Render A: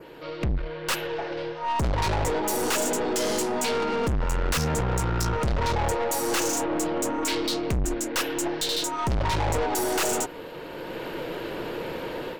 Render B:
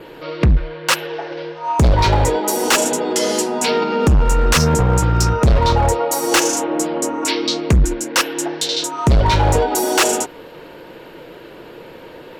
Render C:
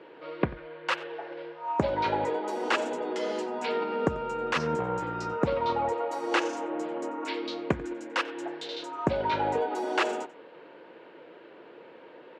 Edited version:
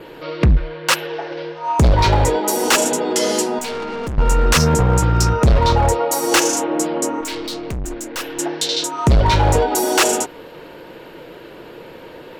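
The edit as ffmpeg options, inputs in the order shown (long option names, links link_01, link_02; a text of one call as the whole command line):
ffmpeg -i take0.wav -i take1.wav -filter_complex "[0:a]asplit=2[link_01][link_02];[1:a]asplit=3[link_03][link_04][link_05];[link_03]atrim=end=3.592[link_06];[link_01]atrim=start=3.588:end=4.182[link_07];[link_04]atrim=start=4.178:end=7.212[link_08];[link_02]atrim=start=7.208:end=8.392[link_09];[link_05]atrim=start=8.388[link_10];[link_06][link_07]acrossfade=duration=0.004:curve1=hsin:curve2=hsin[link_11];[link_11][link_08]acrossfade=duration=0.004:curve1=hsin:curve2=hsin[link_12];[link_12][link_09]acrossfade=duration=0.004:curve1=hsin:curve2=hsin[link_13];[link_13][link_10]acrossfade=duration=0.004:curve1=hsin:curve2=hsin" out.wav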